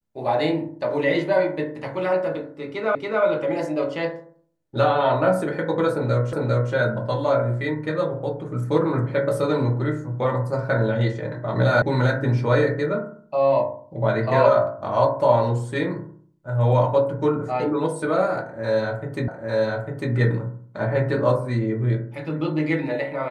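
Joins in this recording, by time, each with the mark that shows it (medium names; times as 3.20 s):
2.95 s: repeat of the last 0.28 s
6.33 s: repeat of the last 0.4 s
11.82 s: sound stops dead
19.28 s: repeat of the last 0.85 s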